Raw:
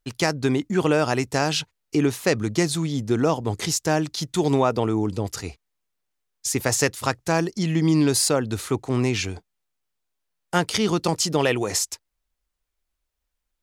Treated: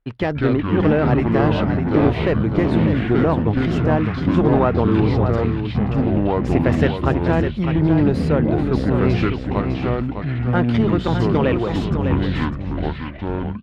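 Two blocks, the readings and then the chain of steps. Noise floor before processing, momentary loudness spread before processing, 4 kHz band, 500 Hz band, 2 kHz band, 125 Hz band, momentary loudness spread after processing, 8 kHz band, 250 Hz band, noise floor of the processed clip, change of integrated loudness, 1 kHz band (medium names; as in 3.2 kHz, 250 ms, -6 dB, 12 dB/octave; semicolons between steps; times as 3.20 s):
-79 dBFS, 7 LU, -6.5 dB, +4.5 dB, +1.5 dB, +9.0 dB, 7 LU, under -25 dB, +7.0 dB, -28 dBFS, +4.0 dB, +3.5 dB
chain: treble shelf 11 kHz -10 dB; in parallel at +2 dB: gain riding 2 s; on the sum: one-sided clip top -14.5 dBFS; ever faster or slower copies 121 ms, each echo -5 st, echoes 3; distance through air 500 m; on a send: delay 604 ms -7.5 dB; on the sum: trim -2.5 dB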